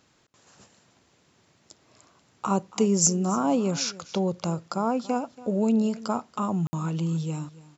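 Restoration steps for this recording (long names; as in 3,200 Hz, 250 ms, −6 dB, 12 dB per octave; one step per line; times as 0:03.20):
repair the gap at 0:06.67, 60 ms
echo removal 281 ms −19 dB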